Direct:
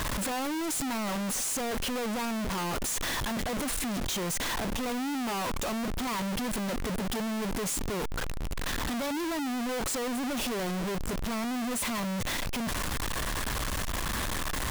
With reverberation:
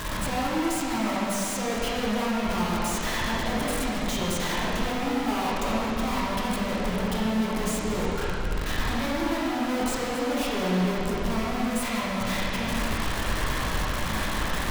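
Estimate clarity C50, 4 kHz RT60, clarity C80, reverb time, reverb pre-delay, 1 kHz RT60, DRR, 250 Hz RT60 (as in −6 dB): −3.5 dB, 2.3 s, −1.0 dB, 2.7 s, 15 ms, 2.7 s, −7.0 dB, 2.8 s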